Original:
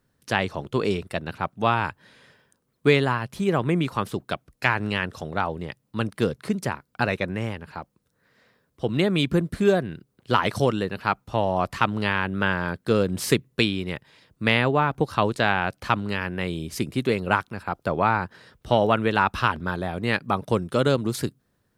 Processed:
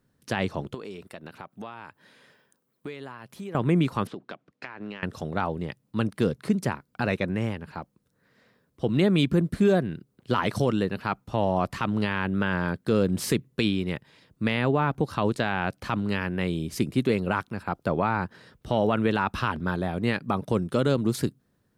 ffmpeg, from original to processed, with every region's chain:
ffmpeg -i in.wav -filter_complex "[0:a]asettb=1/sr,asplit=3[link_01][link_02][link_03];[link_01]atrim=end=0.744[link_04];[link_02]atrim=start=0.74:end=3.55,asetpts=PTS-STARTPTS,afade=type=in:duration=0.004:curve=qsin,afade=type=out:start_time=2.806:duration=0.004:curve=qsin,aemphasis=mode=production:type=bsi,acompressor=threshold=-36dB:ratio=4:attack=3.2:release=140:knee=1:detection=peak,lowpass=frequency=2600:poles=1[link_05];[link_03]atrim=start=3.546[link_06];[link_04][link_05]acrossfade=duration=0.004:curve1=hsin:curve2=qsin[link_07];[link_07][link_06]acrossfade=duration=0.004:curve1=qsin:curve2=hsin,asettb=1/sr,asplit=3[link_08][link_09][link_10];[link_08]atrim=end=4.074[link_11];[link_09]atrim=start=4.07:end=5.03,asetpts=PTS-STARTPTS,afade=type=in:duration=0.004:curve=qsin,afade=type=out:start_time=0.956:duration=0.004:curve=qsin,highpass=220,lowpass=3700,acompressor=threshold=-32dB:ratio=16:attack=3.2:release=140:knee=1:detection=peak[link_12];[link_10]atrim=start=5.026[link_13];[link_11][link_12]acrossfade=duration=0.004:curve1=hsin:curve2=qsin[link_14];[link_14][link_13]acrossfade=duration=0.004:curve1=qsin:curve2=hsin,equalizer=frequency=210:width=0.64:gain=5,alimiter=limit=-9.5dB:level=0:latency=1:release=32,volume=-2.5dB" out.wav

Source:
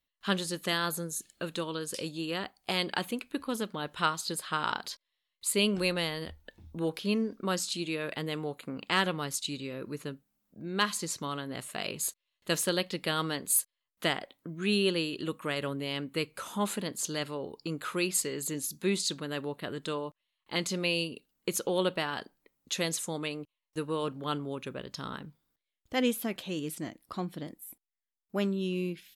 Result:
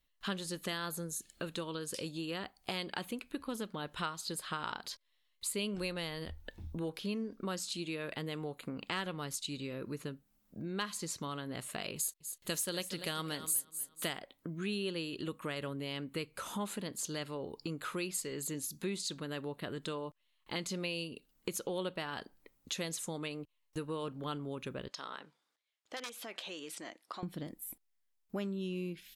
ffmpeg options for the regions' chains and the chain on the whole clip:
ffmpeg -i in.wav -filter_complex "[0:a]asettb=1/sr,asplit=3[link_01][link_02][link_03];[link_01]atrim=end=11.964[link_04];[link_02]atrim=start=11.96:end=14.2,asetpts=PTS-STARTPTS,afade=type=in:duration=0.004:curve=qsin,afade=type=out:start_time=2.236:duration=0.004:curve=qsin,aemphasis=mode=production:type=cd,aecho=1:1:243|486|729:0.2|0.0559|0.0156,atrim=end_sample=98784[link_05];[link_03]atrim=start=14.196[link_06];[link_04][link_05]acrossfade=duration=0.004:curve1=hsin:curve2=qsin[link_07];[link_07][link_06]acrossfade=duration=0.004:curve1=qsin:curve2=hsin,asettb=1/sr,asplit=3[link_08][link_09][link_10];[link_08]atrim=end=24.884[link_11];[link_09]atrim=start=24.88:end=27.23,asetpts=PTS-STARTPTS,afade=type=in:duration=0.004:curve=qsin,afade=type=out:start_time=2.346:duration=0.004:curve=qsin,aeval=exprs='(mod(9.44*val(0)+1,2)-1)/9.44':channel_layout=same,acompressor=threshold=-35dB:ratio=6:attack=3.2:release=140:knee=1:detection=peak,highpass=560,lowpass=7400[link_12];[link_10]atrim=start=27.226[link_13];[link_11][link_12]acrossfade=duration=0.004:curve1=hsin:curve2=qsin[link_14];[link_14][link_13]acrossfade=duration=0.004:curve1=qsin:curve2=hsin,lowshelf=frequency=61:gain=11.5,acompressor=threshold=-44dB:ratio=2.5,volume=3.5dB" out.wav

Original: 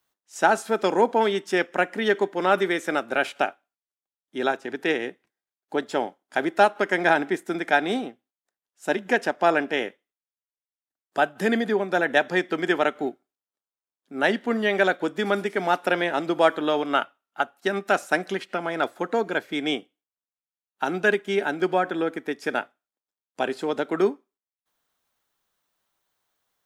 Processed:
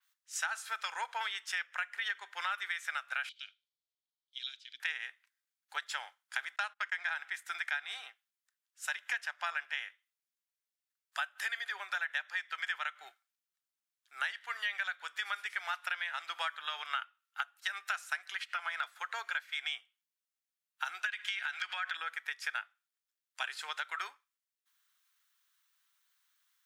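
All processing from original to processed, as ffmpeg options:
ffmpeg -i in.wav -filter_complex "[0:a]asettb=1/sr,asplit=3[link_01][link_02][link_03];[link_01]atrim=end=3.294[link_04];[link_02]atrim=start=3.29:end=4.8,asetpts=PTS-STARTPTS,afade=type=in:duration=0.004:curve=qsin,afade=type=out:start_time=1.506:duration=0.004:curve=qsin,highshelf=frequency=2900:width_type=q:width=3:gain=12.5,acompressor=threshold=-26dB:ratio=1.5:attack=3.2:release=140:knee=1:detection=peak,asplit=3[link_05][link_06][link_07];[link_05]bandpass=frequency=270:width_type=q:width=8,volume=0dB[link_08];[link_06]bandpass=frequency=2290:width_type=q:width=8,volume=-6dB[link_09];[link_07]bandpass=frequency=3010:width_type=q:width=8,volume=-9dB[link_10];[link_08][link_09][link_10]amix=inputs=3:normalize=0[link_11];[link_03]atrim=start=4.796[link_12];[link_04][link_11]acrossfade=duration=0.004:curve1=hsin:curve2=qsin[link_13];[link_13][link_12]acrossfade=duration=0.004:curve1=qsin:curve2=hsin,asettb=1/sr,asplit=3[link_14][link_15][link_16];[link_14]atrim=end=6.564[link_17];[link_15]atrim=start=6.56:end=7.13,asetpts=PTS-STARTPTS,afade=type=in:duration=0.004:curve=qsin,afade=type=out:start_time=0.566:duration=0.004:curve=qsin,lowpass=9200,agate=range=-31dB:threshold=-35dB:ratio=16:release=100:detection=peak[link_18];[link_16]atrim=start=7.126[link_19];[link_17][link_18]acrossfade=duration=0.004:curve1=hsin:curve2=qsin[link_20];[link_20][link_19]acrossfade=duration=0.004:curve1=qsin:curve2=hsin,asettb=1/sr,asplit=3[link_21][link_22][link_23];[link_21]atrim=end=21.064[link_24];[link_22]atrim=start=21.06:end=21.97,asetpts=PTS-STARTPTS,afade=type=in:duration=0.004:curve=qsin,afade=type=out:start_time=0.906:duration=0.004:curve=qsin,equalizer=frequency=3000:width=0.36:gain=12.5,acompressor=threshold=-23dB:ratio=12:attack=3.2:release=140:knee=1:detection=peak[link_25];[link_23]atrim=start=21.966[link_26];[link_24][link_25]acrossfade=duration=0.004:curve1=hsin:curve2=qsin[link_27];[link_27][link_26]acrossfade=duration=0.004:curve1=qsin:curve2=hsin,highpass=frequency=1300:width=0.5412,highpass=frequency=1300:width=1.3066,acompressor=threshold=-35dB:ratio=6,adynamicequalizer=threshold=0.002:dfrequency=4400:dqfactor=0.7:tfrequency=4400:tqfactor=0.7:attack=5:release=100:ratio=0.375:range=2:mode=cutabove:tftype=highshelf,volume=2dB" out.wav

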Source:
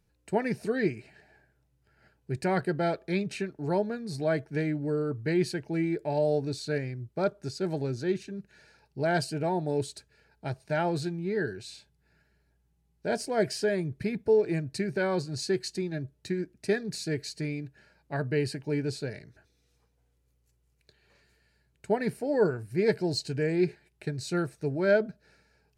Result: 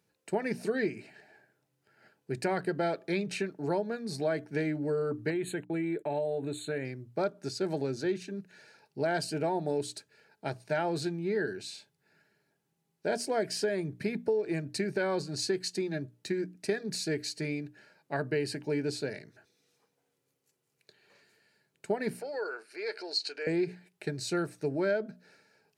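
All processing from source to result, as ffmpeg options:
ffmpeg -i in.wav -filter_complex "[0:a]asettb=1/sr,asplit=3[link_01][link_02][link_03];[link_01]atrim=end=5.304[link_04];[link_02]atrim=start=5.3:end=6.85,asetpts=PTS-STARTPTS,afade=type=in:duration=0.004:curve=qsin,afade=type=out:start_time=1.546:duration=0.004:curve=qsin,agate=range=-33dB:threshold=-45dB:ratio=16:release=100:detection=peak,acompressor=threshold=-30dB:ratio=3:attack=3.2:release=140:knee=1:detection=peak,asuperstop=centerf=5300:order=12:qfactor=2[link_05];[link_03]atrim=start=6.846[link_06];[link_04][link_05]acrossfade=duration=0.004:curve1=hsin:curve2=qsin[link_07];[link_07][link_06]acrossfade=duration=0.004:curve1=qsin:curve2=hsin,asettb=1/sr,asplit=3[link_08][link_09][link_10];[link_08]atrim=end=22.214[link_11];[link_09]atrim=start=22.21:end=23.47,asetpts=PTS-STARTPTS,afade=type=in:duration=0.004:curve=qsin,afade=type=out:start_time=1.256:duration=0.004:curve=qsin,acompressor=threshold=-34dB:ratio=3:attack=3.2:release=140:knee=1:detection=peak,highpass=frequency=430:width=0.5412,highpass=frequency=430:width=1.3066,equalizer=frequency=630:width_type=q:width=4:gain=-4,equalizer=frequency=1400:width_type=q:width=4:gain=8,equalizer=frequency=2400:width_type=q:width=4:gain=6,equalizer=frequency=4400:width_type=q:width=4:gain=9,equalizer=frequency=7800:width_type=q:width=4:gain=-6,lowpass=frequency=9500:width=0.5412,lowpass=frequency=9500:width=1.3066[link_12];[link_10]atrim=start=23.466[link_13];[link_11][link_12]acrossfade=duration=0.004:curve1=hsin:curve2=qsin[link_14];[link_14][link_13]acrossfade=duration=0.004:curve1=qsin:curve2=hsin,highpass=190,bandreject=frequency=60:width_type=h:width=6,bandreject=frequency=120:width_type=h:width=6,bandreject=frequency=180:width_type=h:width=6,bandreject=frequency=240:width_type=h:width=6,bandreject=frequency=300:width_type=h:width=6,acompressor=threshold=-28dB:ratio=6,volume=2dB" out.wav

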